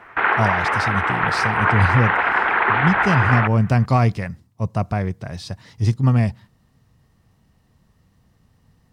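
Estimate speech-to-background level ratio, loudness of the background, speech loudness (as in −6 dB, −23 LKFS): −2.5 dB, −19.0 LKFS, −21.5 LKFS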